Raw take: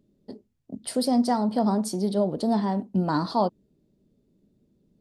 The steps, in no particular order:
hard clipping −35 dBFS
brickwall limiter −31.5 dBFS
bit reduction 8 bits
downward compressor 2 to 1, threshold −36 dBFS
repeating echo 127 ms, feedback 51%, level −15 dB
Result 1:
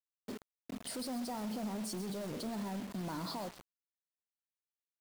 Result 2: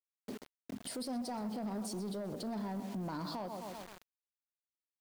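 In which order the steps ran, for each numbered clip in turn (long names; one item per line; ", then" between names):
brickwall limiter, then hard clipping, then repeating echo, then bit reduction, then downward compressor
repeating echo, then bit reduction, then downward compressor, then brickwall limiter, then hard clipping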